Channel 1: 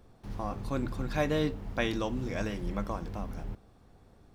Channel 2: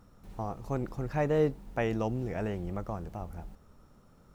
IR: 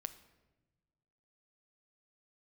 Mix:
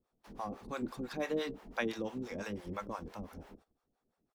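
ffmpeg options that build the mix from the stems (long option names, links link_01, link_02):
-filter_complex "[0:a]highpass=frequency=210:width=0.5412,highpass=frequency=210:width=1.3066,volume=0dB[link_01];[1:a]alimiter=level_in=3.5dB:limit=-24dB:level=0:latency=1,volume=-3.5dB,adelay=0.6,volume=-7.5dB[link_02];[link_01][link_02]amix=inputs=2:normalize=0,acrossover=split=540[link_03][link_04];[link_03]aeval=exprs='val(0)*(1-1/2+1/2*cos(2*PI*5.9*n/s))':channel_layout=same[link_05];[link_04]aeval=exprs='val(0)*(1-1/2-1/2*cos(2*PI*5.9*n/s))':channel_layout=same[link_06];[link_05][link_06]amix=inputs=2:normalize=0,agate=range=-16dB:threshold=-59dB:ratio=16:detection=peak"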